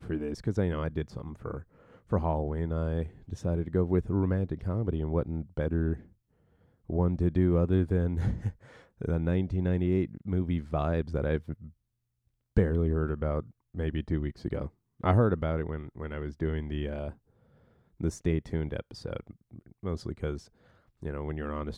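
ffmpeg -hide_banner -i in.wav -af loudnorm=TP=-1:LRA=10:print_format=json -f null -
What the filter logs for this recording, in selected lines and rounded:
"input_i" : "-31.4",
"input_tp" : "-11.3",
"input_lra" : "8.5",
"input_thresh" : "-42.2",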